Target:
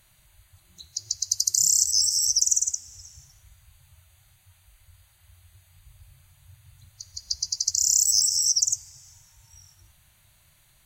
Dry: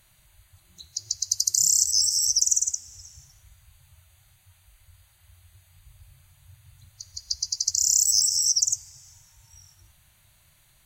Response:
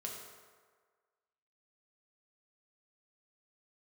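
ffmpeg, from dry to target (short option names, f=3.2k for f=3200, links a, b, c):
-filter_complex "[0:a]asettb=1/sr,asplit=3[a][b][c];[a]atrim=end=7.224[d];[b]atrim=start=7.22:end=7.62,asetpts=PTS-STARTPTS,afade=t=in:d=0.004:c=qsin,afade=t=out:st=0.396:d=0.004:c=qsin,equalizer=f=310:t=o:w=1.8:g=7.5[e];[c]atrim=start=7.616[f];[d][e]acrossfade=d=0.004:c1=hsin:c2=qsin[g];[g][f]acrossfade=d=0.004:c1=qsin:c2=hsin"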